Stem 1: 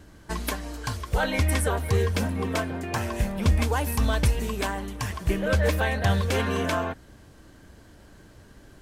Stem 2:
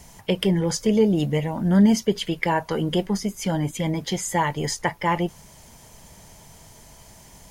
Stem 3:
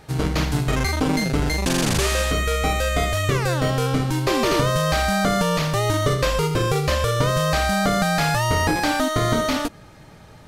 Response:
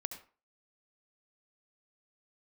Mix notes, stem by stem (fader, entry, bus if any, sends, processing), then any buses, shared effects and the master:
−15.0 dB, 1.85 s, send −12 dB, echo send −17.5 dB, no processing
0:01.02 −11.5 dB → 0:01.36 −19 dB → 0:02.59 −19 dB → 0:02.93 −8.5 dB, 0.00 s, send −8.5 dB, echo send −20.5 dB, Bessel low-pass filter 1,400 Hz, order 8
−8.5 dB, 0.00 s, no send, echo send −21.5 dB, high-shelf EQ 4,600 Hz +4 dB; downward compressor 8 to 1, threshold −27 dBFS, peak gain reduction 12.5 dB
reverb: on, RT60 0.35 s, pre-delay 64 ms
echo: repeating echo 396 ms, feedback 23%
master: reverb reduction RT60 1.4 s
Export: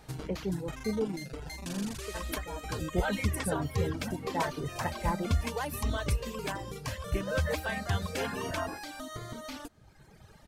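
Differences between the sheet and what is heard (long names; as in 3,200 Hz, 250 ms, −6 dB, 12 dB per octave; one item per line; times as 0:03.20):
stem 1 −15.0 dB → −8.0 dB
stem 2: send off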